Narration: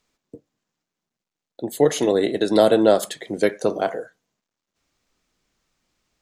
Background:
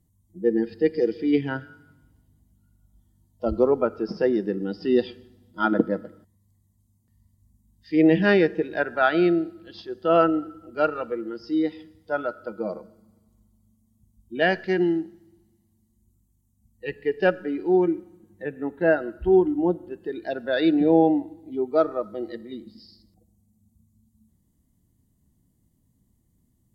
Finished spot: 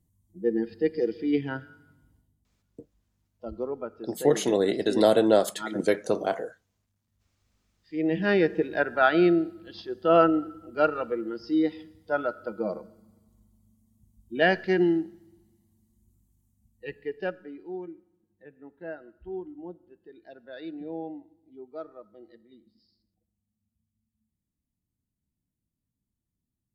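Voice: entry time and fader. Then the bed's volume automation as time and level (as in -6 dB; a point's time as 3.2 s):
2.45 s, -4.5 dB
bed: 2.14 s -4 dB
2.39 s -12.5 dB
7.88 s -12.5 dB
8.55 s -0.5 dB
16.44 s -0.5 dB
17.87 s -18.5 dB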